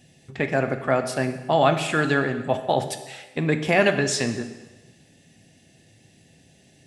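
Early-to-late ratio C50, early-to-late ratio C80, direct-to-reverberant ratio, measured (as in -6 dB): 10.0 dB, 11.5 dB, 7.5 dB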